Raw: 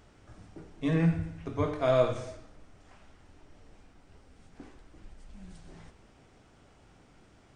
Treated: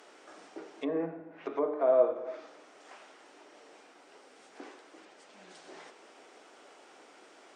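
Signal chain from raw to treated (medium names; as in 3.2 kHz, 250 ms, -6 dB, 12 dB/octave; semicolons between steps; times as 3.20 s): in parallel at 0 dB: compression, threshold -39 dBFS, peak gain reduction 18.5 dB; on the sum: low-pass that closes with the level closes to 770 Hz, closed at -26 dBFS; high-pass 350 Hz 24 dB/octave; trim +1.5 dB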